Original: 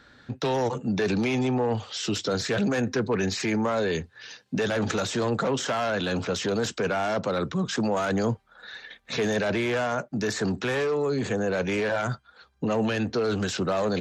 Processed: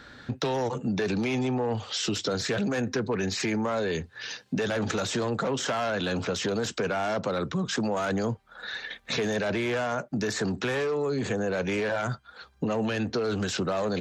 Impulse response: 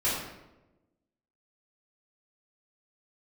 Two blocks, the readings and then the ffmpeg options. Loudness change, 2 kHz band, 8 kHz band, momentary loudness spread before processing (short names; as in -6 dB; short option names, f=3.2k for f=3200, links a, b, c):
-2.0 dB, -1.5 dB, -0.5 dB, 7 LU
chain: -af "acompressor=threshold=-35dB:ratio=2.5,volume=6dB"